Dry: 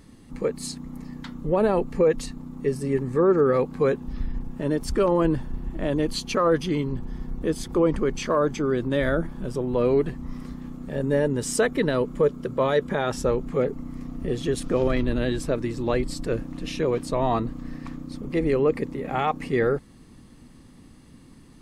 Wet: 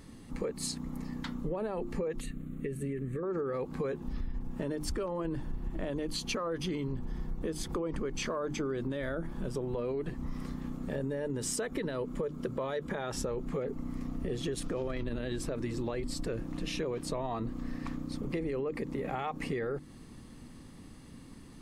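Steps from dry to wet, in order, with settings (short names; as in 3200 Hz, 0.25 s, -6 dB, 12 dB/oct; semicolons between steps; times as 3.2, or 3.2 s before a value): notches 50/100/150/200/250/300/350 Hz; limiter -19 dBFS, peak gain reduction 9 dB; compressor, threshold -31 dBFS, peak gain reduction 8.5 dB; 2.2–3.23 fixed phaser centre 2200 Hz, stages 4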